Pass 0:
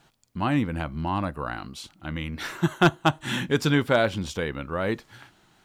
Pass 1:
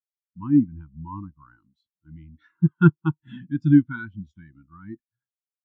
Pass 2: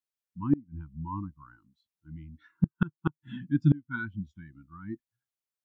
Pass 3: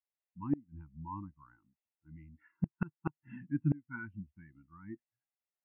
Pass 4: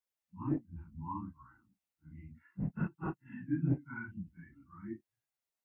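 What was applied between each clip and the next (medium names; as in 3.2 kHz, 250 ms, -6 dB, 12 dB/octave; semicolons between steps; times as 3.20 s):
elliptic band-stop 330–890 Hz, stop band 40 dB; spectral contrast expander 2.5:1; trim +3 dB
inverted gate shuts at -11 dBFS, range -29 dB
rippled Chebyshev low-pass 2.8 kHz, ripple 9 dB
phase randomisation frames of 100 ms; trim +1.5 dB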